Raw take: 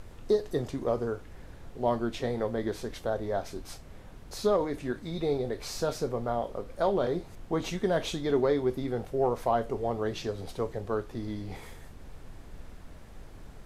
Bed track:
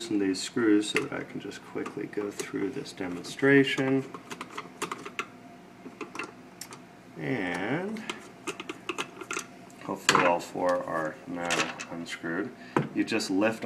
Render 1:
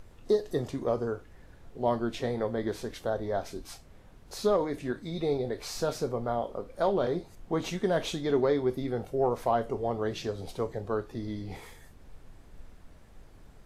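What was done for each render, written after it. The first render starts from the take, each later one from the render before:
noise reduction from a noise print 6 dB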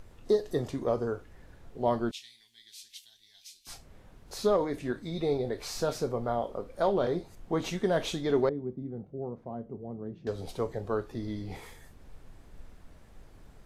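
0:02.11–0:03.67: inverse Chebyshev high-pass filter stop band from 1,400 Hz
0:08.49–0:10.27: resonant band-pass 180 Hz, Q 1.7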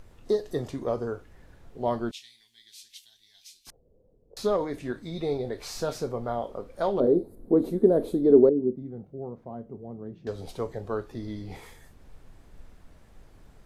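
0:03.70–0:04.37: transistor ladder low-pass 530 Hz, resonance 70%
0:07.00–0:08.76: drawn EQ curve 160 Hz 0 dB, 240 Hz +11 dB, 460 Hz +10 dB, 810 Hz −6 dB, 1,500 Hz −12 dB, 2,900 Hz −25 dB, 4,100 Hz −12 dB, 6,000 Hz −23 dB, 10,000 Hz 0 dB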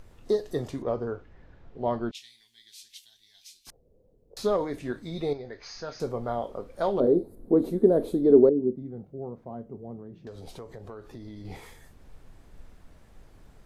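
0:00.82–0:02.15: high-frequency loss of the air 170 metres
0:05.33–0:06.00: Chebyshev low-pass with heavy ripple 6,600 Hz, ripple 9 dB
0:09.96–0:11.45: downward compressor, threshold −38 dBFS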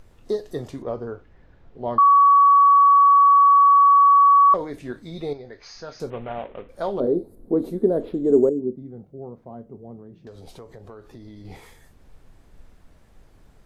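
0:01.98–0:04.54: beep over 1,130 Hz −10 dBFS
0:06.10–0:06.69: variable-slope delta modulation 16 kbit/s
0:08.00–0:08.60: linearly interpolated sample-rate reduction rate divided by 6×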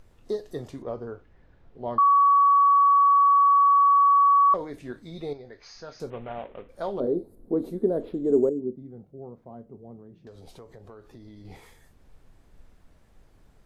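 level −4.5 dB

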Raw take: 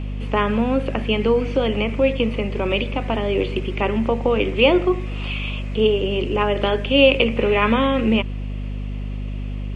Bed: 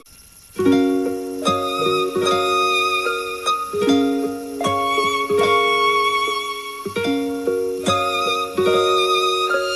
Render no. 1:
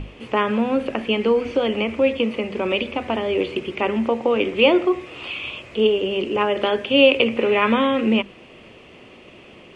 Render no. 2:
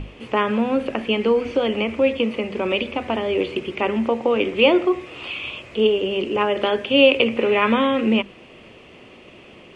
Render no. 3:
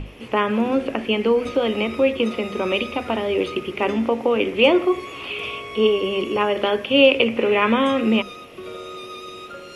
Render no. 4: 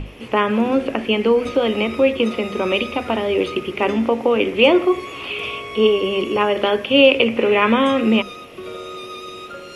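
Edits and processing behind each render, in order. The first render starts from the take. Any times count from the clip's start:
mains-hum notches 50/100/150/200/250 Hz
no processing that can be heard
mix in bed −18.5 dB
level +2.5 dB; brickwall limiter −2 dBFS, peak gain reduction 1.5 dB

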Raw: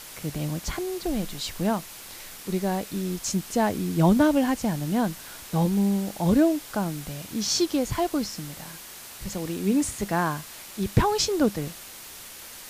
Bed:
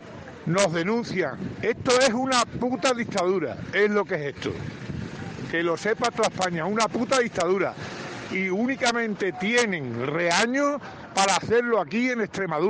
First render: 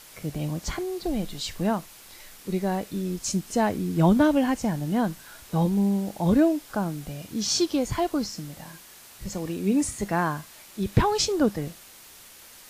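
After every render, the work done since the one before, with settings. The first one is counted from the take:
noise reduction from a noise print 6 dB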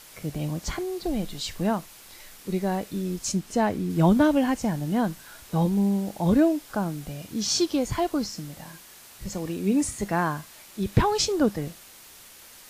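0:03.32–0:03.90: high-shelf EQ 5,600 Hz −5.5 dB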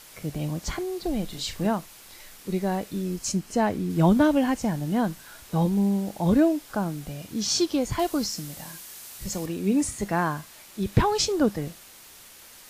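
0:01.26–0:01.67: double-tracking delay 37 ms −7 dB
0:03.05–0:03.66: notch filter 3,600 Hz
0:07.99–0:09.46: high-shelf EQ 4,100 Hz +8 dB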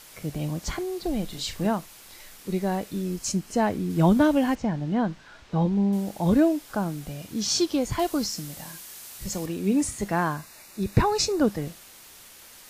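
0:04.55–0:05.93: high-frequency loss of the air 150 metres
0:10.36–0:11.41: Butterworth band-reject 3,200 Hz, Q 5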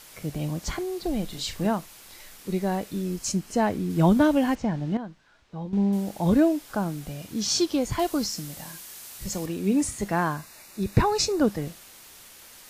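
0:04.97–0:05.73: clip gain −11.5 dB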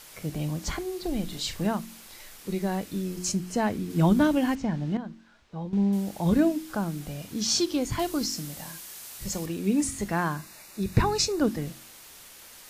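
hum removal 45.19 Hz, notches 8
dynamic equaliser 630 Hz, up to −4 dB, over −35 dBFS, Q 0.79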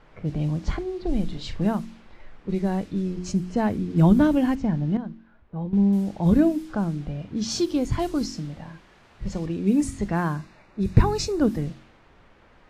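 low-pass that shuts in the quiet parts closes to 1,600 Hz, open at −22 dBFS
spectral tilt −2 dB per octave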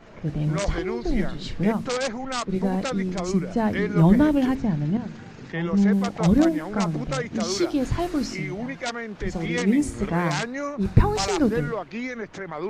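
mix in bed −7 dB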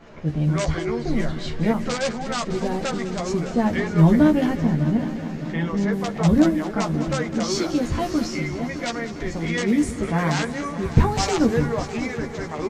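double-tracking delay 13 ms −4.5 dB
echo machine with several playback heads 202 ms, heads first and third, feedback 68%, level −14.5 dB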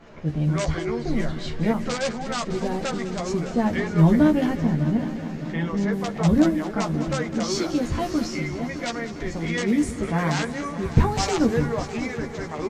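level −1.5 dB

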